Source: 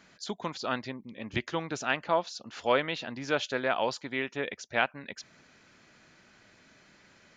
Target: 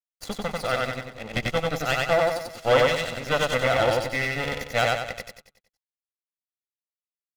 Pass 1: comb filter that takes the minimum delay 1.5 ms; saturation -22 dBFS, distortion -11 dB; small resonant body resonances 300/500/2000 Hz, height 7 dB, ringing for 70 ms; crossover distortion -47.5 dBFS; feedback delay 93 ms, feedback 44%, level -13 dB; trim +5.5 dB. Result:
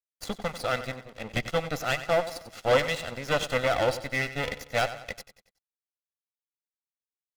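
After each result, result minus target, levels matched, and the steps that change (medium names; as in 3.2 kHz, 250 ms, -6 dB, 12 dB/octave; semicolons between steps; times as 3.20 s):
echo-to-direct -11.5 dB; saturation: distortion +7 dB
change: feedback delay 93 ms, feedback 44%, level -1.5 dB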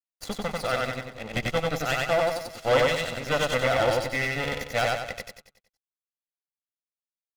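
saturation: distortion +7 dB
change: saturation -15.5 dBFS, distortion -18 dB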